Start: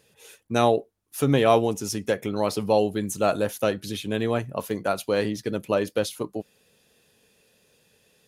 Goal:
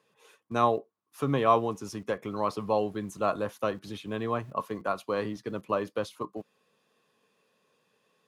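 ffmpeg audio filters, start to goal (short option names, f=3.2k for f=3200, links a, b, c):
-filter_complex "[0:a]lowpass=f=3.2k:p=1,equalizer=f=1.1k:t=o:w=0.36:g=14.5,acrossover=split=130|2100[a][b][c];[a]aeval=exprs='val(0)*gte(abs(val(0)),0.00562)':c=same[d];[d][b][c]amix=inputs=3:normalize=0,volume=-7dB"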